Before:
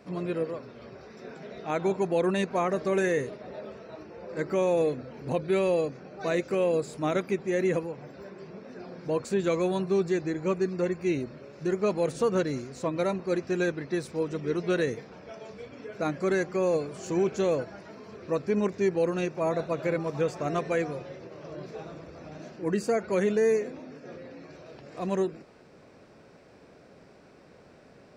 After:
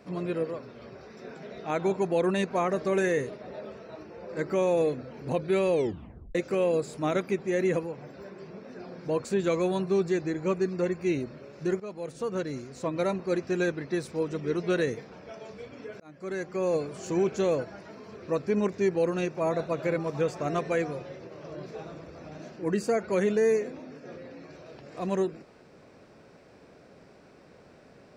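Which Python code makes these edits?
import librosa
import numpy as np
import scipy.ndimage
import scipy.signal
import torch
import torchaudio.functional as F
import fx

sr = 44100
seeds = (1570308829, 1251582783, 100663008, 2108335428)

y = fx.edit(x, sr, fx.tape_stop(start_s=5.72, length_s=0.63),
    fx.fade_in_from(start_s=11.8, length_s=1.26, floor_db=-15.0),
    fx.fade_in_span(start_s=16.0, length_s=0.81), tone=tone)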